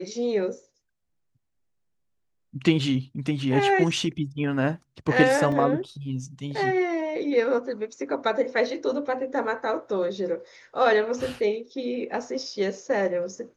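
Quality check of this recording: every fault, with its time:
5.52 s: dropout 2.7 ms

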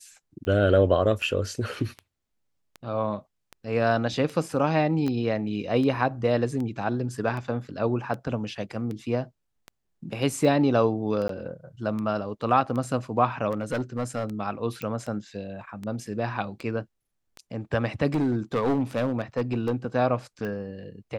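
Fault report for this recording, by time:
tick 78 rpm -23 dBFS
5.08 s: pop -18 dBFS
11.28–11.29 s: dropout 13 ms
13.50–14.25 s: clipped -22.5 dBFS
14.82 s: pop -19 dBFS
18.14–19.75 s: clipped -19.5 dBFS

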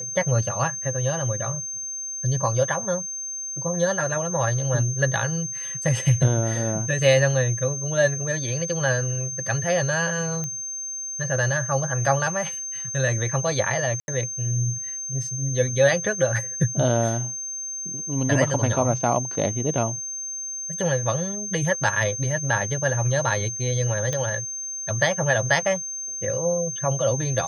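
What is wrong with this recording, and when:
whine 6.3 kHz -29 dBFS
10.44 s: pop -17 dBFS
14.00–14.08 s: dropout 81 ms
24.13 s: pop -13 dBFS

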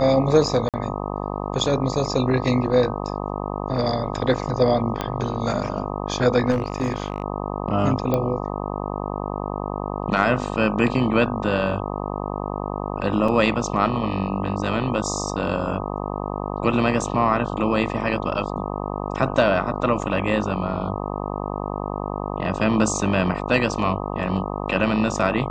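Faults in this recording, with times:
buzz 50 Hz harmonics 25 -28 dBFS
0.69–0.74 s: dropout 47 ms
5.01 s: pop -10 dBFS
6.50–7.24 s: clipped -17 dBFS
8.14 s: pop -10 dBFS
13.28 s: dropout 3.9 ms

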